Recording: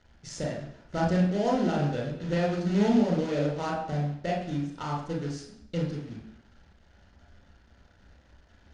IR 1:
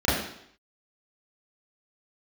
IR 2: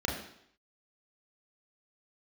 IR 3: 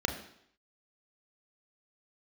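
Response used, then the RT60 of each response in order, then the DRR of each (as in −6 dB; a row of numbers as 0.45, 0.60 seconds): 2; 0.70, 0.70, 0.70 seconds; −12.0, −2.0, 3.5 decibels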